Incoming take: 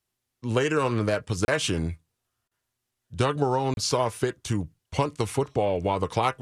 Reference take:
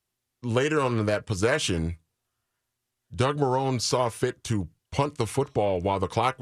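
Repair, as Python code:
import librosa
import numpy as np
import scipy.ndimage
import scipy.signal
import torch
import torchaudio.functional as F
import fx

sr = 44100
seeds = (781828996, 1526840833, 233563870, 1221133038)

y = fx.fix_interpolate(x, sr, at_s=(1.45, 3.74), length_ms=31.0)
y = fx.fix_interpolate(y, sr, at_s=(2.48,), length_ms=32.0)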